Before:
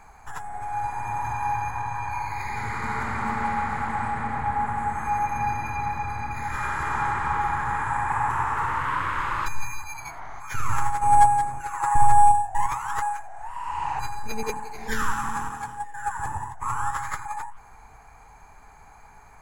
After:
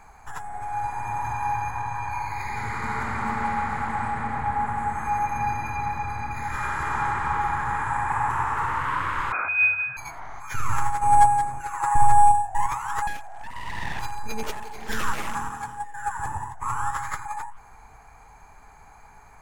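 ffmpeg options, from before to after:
-filter_complex "[0:a]asettb=1/sr,asplit=3[a][b][c];[a]atrim=end=9.324[d];[b]atrim=start=9.32:end=9.97,asetpts=PTS-STARTPTS,afade=t=in:d=0.004:c=qsin,afade=t=out:st=0.646:d=0.004:c=qsin,lowpass=f=2.1k:t=q:w=0.5098,lowpass=f=2.1k:t=q:w=0.6013,lowpass=f=2.1k:t=q:w=0.9,lowpass=f=2.1k:t=q:w=2.563,afreqshift=-2500[e];[c]atrim=start=9.966[f];[d][e]acrossfade=d=0.004:c1=hsin:c2=qsin[g];[g][f]acrossfade=d=0.004:c1=qsin:c2=hsin,asettb=1/sr,asplit=3[h][i][j];[h]atrim=end=13.074[k];[i]atrim=start=13.07:end=15.35,asetpts=PTS-STARTPTS,afade=t=in:d=0.004:c=qsin,afade=t=out:st=2.276:d=0.004:c=qsin,aeval=exprs='abs(val(0))':c=same[l];[j]atrim=start=15.346[m];[k][l]acrossfade=d=0.004:c1=hsin:c2=qsin[n];[n][m]acrossfade=d=0.004:c1=qsin:c2=hsin"

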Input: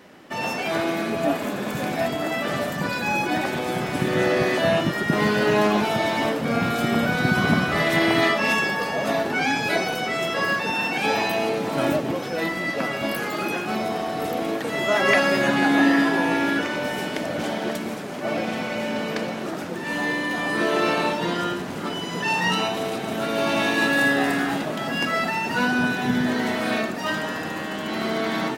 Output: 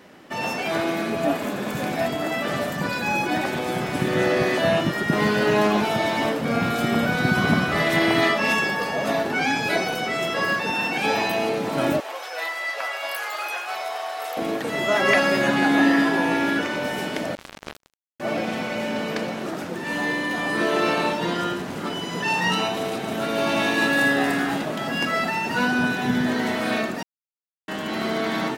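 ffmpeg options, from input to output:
-filter_complex "[0:a]asettb=1/sr,asplit=3[a][b][c];[a]atrim=end=12.004[d];[b]atrim=start=12:end=14.37,asetpts=PTS-STARTPTS,afade=t=in:d=0.004:c=qsin,afade=t=out:st=2.366:d=0.004:c=qsin,highpass=f=650:w=0.5412,highpass=f=650:w=1.3066[e];[c]atrim=start=14.366[f];[d][e]acrossfade=d=0.004:c1=hsin:c2=qsin[g];[g][f]acrossfade=d=0.004:c1=qsin:c2=hsin,asettb=1/sr,asplit=3[h][i][j];[h]atrim=end=17.354[k];[i]atrim=start=17.35:end=18.2,asetpts=PTS-STARTPTS,afade=t=in:d=0.004:c=qsin,afade=t=out:st=0.846:d=0.004:c=qsin,acrusher=bits=2:mix=0:aa=0.5[l];[j]atrim=start=18.196[m];[k][l]acrossfade=d=0.004:c1=hsin:c2=qsin[n];[n][m]acrossfade=d=0.004:c1=qsin:c2=hsin,asplit=3[o][p][q];[o]atrim=end=27.03,asetpts=PTS-STARTPTS,afade=t=out:st=27.026:d=0.004:c=hsin[r];[p]atrim=start=27.03:end=27.68,asetpts=PTS-STARTPTS,volume=0[s];[q]atrim=start=27.68,asetpts=PTS-STARTPTS,afade=t=in:d=0.004:c=hsin[t];[r][s][t]concat=n=3:v=0:a=1"

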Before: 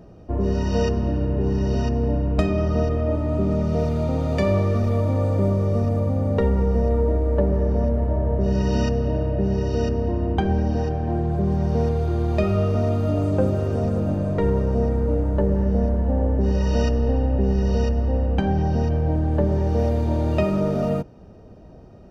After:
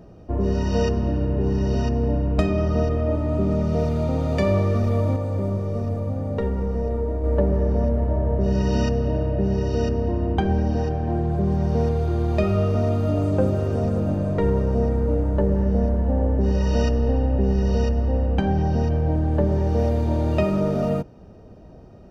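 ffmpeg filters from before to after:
-filter_complex "[0:a]asettb=1/sr,asplit=3[a][b][c];[a]atrim=end=5.164[d];[b]atrim=start=5.16:end=7.24,asetpts=PTS-STARTPTS,afade=t=in:d=0.004:c=qsin,afade=t=out:st=2.076:d=0.004:c=qsin,flanger=delay=6.3:depth=5.4:regen=84:speed=1.8:shape=sinusoidal[e];[c]atrim=start=7.236[f];[d][e]acrossfade=d=0.004:c1=hsin:c2=qsin[g];[g][f]acrossfade=d=0.004:c1=qsin:c2=hsin"

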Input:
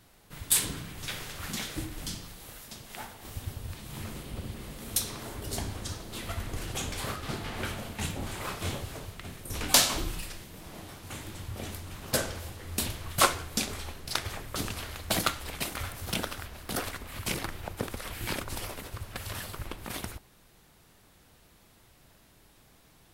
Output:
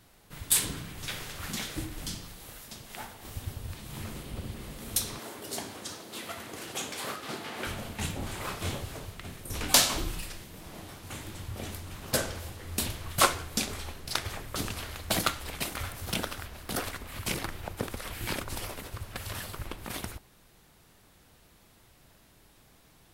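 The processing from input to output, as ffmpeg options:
-filter_complex "[0:a]asettb=1/sr,asplit=3[a][b][c];[a]atrim=end=5.194[d];[b]atrim=start=5.19:end=7.67,asetpts=PTS-STARTPTS,afade=t=in:d=0.004:c=qsin,afade=t=out:st=2.476:d=0.004:c=qsin,highpass=240[e];[c]atrim=start=7.666[f];[d][e]acrossfade=d=0.004:c1=hsin:c2=qsin[g];[g][f]acrossfade=d=0.004:c1=qsin:c2=hsin"

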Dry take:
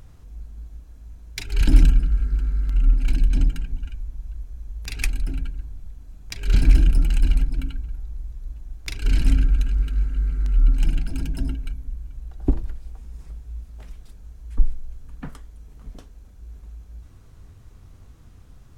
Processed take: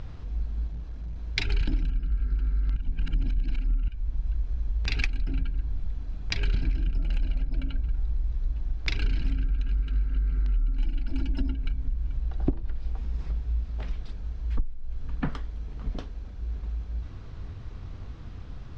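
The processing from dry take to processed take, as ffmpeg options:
-filter_complex "[0:a]asettb=1/sr,asplit=3[a][b][c];[a]atrim=end=0.674[d];[b]atrim=start=0.67:end=1.16,asetpts=PTS-STARTPTS,afade=t=in:d=0.004:c=qsin,afade=t=out:st=0.486:d=0.004:c=qsin,asoftclip=type=hard:threshold=-39dB[e];[c]atrim=start=1.156[f];[d][e]acrossfade=d=0.004:c1=hsin:c2=qsin[g];[g][f]acrossfade=d=0.004:c1=qsin:c2=hsin,asettb=1/sr,asplit=3[h][i][j];[h]atrim=end=6.994[k];[i]atrim=start=6.99:end=7.81,asetpts=PTS-STARTPTS,afade=t=in:d=0.004:c=qsin,afade=t=out:st=0.816:d=0.004:c=qsin,equalizer=f=590:t=o:w=0.39:g=11.5[l];[j]atrim=start=7.806[m];[k][l]acrossfade=d=0.004:c1=hsin:c2=qsin[n];[n][m]acrossfade=d=0.004:c1=qsin:c2=hsin,asettb=1/sr,asplit=3[o][p][q];[o]atrim=end=10.784[r];[p]atrim=start=10.78:end=11.53,asetpts=PTS-STARTPTS,afade=t=in:d=0.004:c=qsin,afade=t=out:st=0.746:d=0.004:c=qsin,aecho=1:1:3.5:0.65,atrim=end_sample=33075[s];[q]atrim=start=11.526[t];[r][s]acrossfade=d=0.004:c1=hsin:c2=qsin[u];[u][t]acrossfade=d=0.004:c1=qsin:c2=hsin,asplit=3[v][w][x];[v]atrim=end=2.762[y];[w]atrim=start=2.758:end=3.882,asetpts=PTS-STARTPTS,areverse[z];[x]atrim=start=3.878[aa];[y][z]acrossfade=d=0.004:c1=hsin:c2=hsin[ab];[ab][aa]acrossfade=d=0.004:c1=hsin:c2=hsin,lowpass=f=4.8k:w=0.5412,lowpass=f=4.8k:w=1.3066,acompressor=threshold=-29dB:ratio=16,volume=7.5dB"

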